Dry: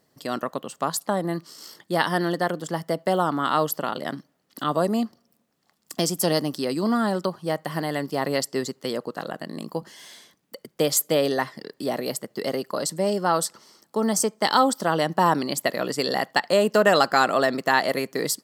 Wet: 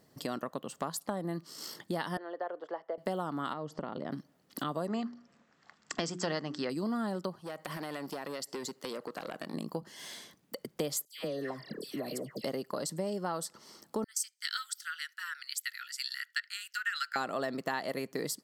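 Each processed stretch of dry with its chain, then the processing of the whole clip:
0:02.17–0:02.98: de-essing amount 85% + high-pass filter 470 Hz 24 dB per octave + head-to-tape spacing loss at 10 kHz 44 dB
0:03.53–0:04.12: low-pass filter 6,800 Hz 24 dB per octave + tilt shelving filter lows +6 dB, about 1,400 Hz + downward compressor 2 to 1, threshold −35 dBFS
0:04.87–0:06.70: Butterworth low-pass 7,900 Hz 96 dB per octave + parametric band 1,600 Hz +12 dB 1.7 octaves + mains-hum notches 60/120/180/240/300/360/420 Hz
0:07.41–0:09.54: high-pass filter 390 Hz 6 dB per octave + downward compressor, threshold −30 dBFS + saturating transformer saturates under 1,900 Hz
0:11.05–0:12.44: notch filter 860 Hz, Q 6.2 + downward compressor 1.5 to 1, threshold −42 dBFS + all-pass dispersion lows, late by 141 ms, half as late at 1,600 Hz
0:14.04–0:17.16: Chebyshev high-pass filter 1,400 Hz, order 6 + multiband upward and downward expander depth 100%
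whole clip: low-shelf EQ 360 Hz +4.5 dB; downward compressor 3 to 1, threshold −36 dBFS

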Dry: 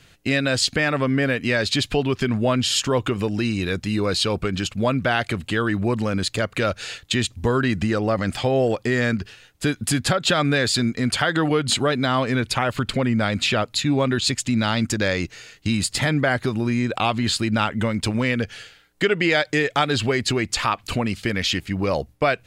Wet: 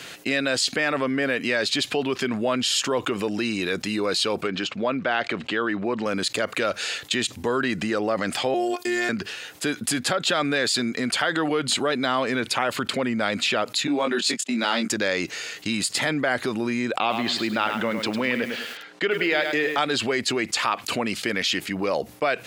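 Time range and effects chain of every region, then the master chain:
0:04.47–0:06.06: high-pass filter 150 Hz 6 dB per octave + high-frequency loss of the air 140 metres
0:08.54–0:09.09: high-shelf EQ 6,300 Hz +10.5 dB + phases set to zero 357 Hz
0:13.87–0:14.88: noise gate −25 dBFS, range −28 dB + Butterworth high-pass 170 Hz + double-tracking delay 21 ms −5 dB
0:16.99–0:19.78: band-pass filter 120–4,300 Hz + feedback echo at a low word length 103 ms, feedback 35%, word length 7 bits, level −9.5 dB
whole clip: high-pass filter 280 Hz 12 dB per octave; envelope flattener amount 50%; level −4 dB

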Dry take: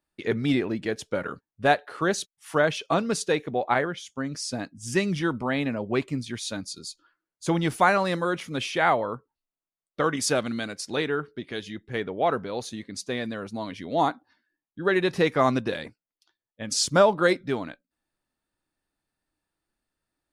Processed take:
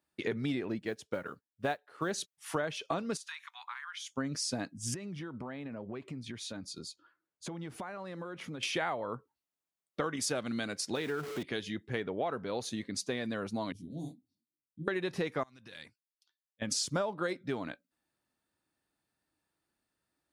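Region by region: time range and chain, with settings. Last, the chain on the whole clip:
0:00.79–0:02.11: noise that follows the level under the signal 34 dB + expander for the loud parts, over −41 dBFS
0:03.17–0:04.13: Butterworth high-pass 970 Hz 72 dB per octave + downward compressor 12 to 1, threshold −38 dBFS
0:04.94–0:08.63: high-shelf EQ 3,400 Hz −10.5 dB + downward compressor 20 to 1, threshold −37 dBFS
0:10.95–0:11.43: converter with a step at zero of −34.5 dBFS + downward compressor 1.5 to 1, threshold −36 dBFS
0:13.72–0:14.88: Chebyshev band-stop filter 180–9,200 Hz + micro pitch shift up and down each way 53 cents
0:15.43–0:16.62: downward compressor 10 to 1, threshold −29 dBFS + guitar amp tone stack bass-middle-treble 5-5-5
whole clip: high-pass filter 72 Hz; downward compressor 6 to 1, threshold −31 dBFS

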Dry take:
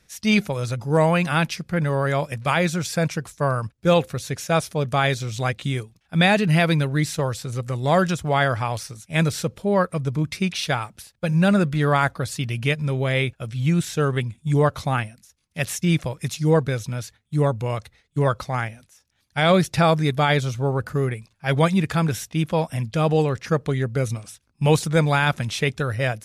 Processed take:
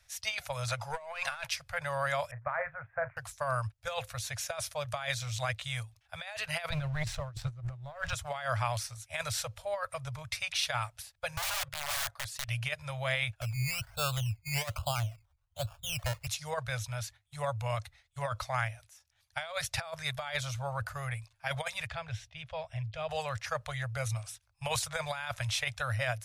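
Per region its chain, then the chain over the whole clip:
0:00.68–0:01.47: high-shelf EQ 4,600 Hz +6.5 dB + mid-hump overdrive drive 15 dB, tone 1,900 Hz, clips at −7 dBFS
0:02.31–0:03.17: Butterworth low-pass 1,900 Hz 48 dB per octave + double-tracking delay 40 ms −14 dB + expander for the loud parts, over −41 dBFS
0:06.70–0:08.13: RIAA equalisation playback + leveller curve on the samples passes 1
0:11.37–0:12.48: low-shelf EQ 120 Hz −8 dB + output level in coarse steps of 10 dB + wrap-around overflow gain 24.5 dB
0:13.41–0:16.27: Butterworth low-pass 1,500 Hz 96 dB per octave + spectral tilt −1.5 dB per octave + sample-and-hold swept by an LFO 15×, swing 60% 1.2 Hz
0:21.87–0:23.09: low-pass filter 2,900 Hz + parametric band 1,100 Hz −11 dB 2 octaves
whole clip: elliptic band-stop filter 110–620 Hz, stop band 40 dB; dynamic equaliser 790 Hz, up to −5 dB, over −39 dBFS, Q 4.7; compressor whose output falls as the input rises −26 dBFS, ratio −0.5; level −6 dB

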